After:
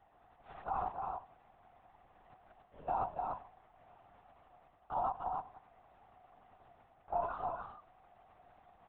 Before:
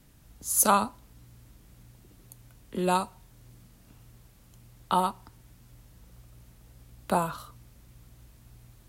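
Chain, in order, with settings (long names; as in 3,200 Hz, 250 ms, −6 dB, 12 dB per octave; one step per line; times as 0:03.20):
variable-slope delta modulation 64 kbit/s
reversed playback
downward compressor 8 to 1, threshold −38 dBFS, peak gain reduction 21 dB
reversed playback
four-pole ladder band-pass 780 Hz, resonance 75%
single-tap delay 290 ms −4 dB
linear-prediction vocoder at 8 kHz whisper
level +11 dB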